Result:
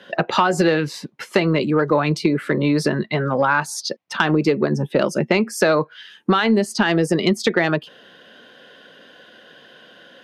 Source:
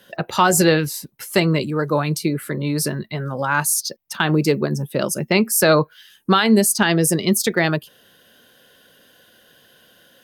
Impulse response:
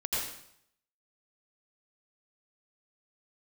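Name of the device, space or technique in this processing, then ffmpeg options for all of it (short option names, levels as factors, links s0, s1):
AM radio: -af "highpass=190,lowpass=3300,acompressor=threshold=0.0891:ratio=8,asoftclip=type=tanh:threshold=0.282,volume=2.66"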